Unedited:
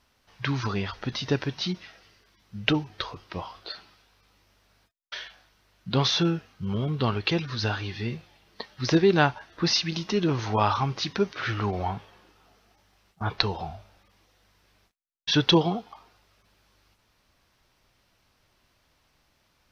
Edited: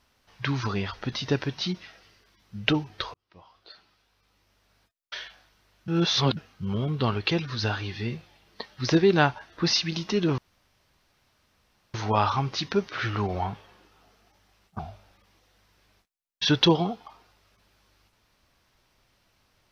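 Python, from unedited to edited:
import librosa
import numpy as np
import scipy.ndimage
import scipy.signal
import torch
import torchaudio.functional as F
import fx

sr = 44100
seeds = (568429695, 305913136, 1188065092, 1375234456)

y = fx.edit(x, sr, fx.fade_in_span(start_s=3.14, length_s=2.02),
    fx.reverse_span(start_s=5.88, length_s=0.49),
    fx.insert_room_tone(at_s=10.38, length_s=1.56),
    fx.cut(start_s=13.23, length_s=0.42), tone=tone)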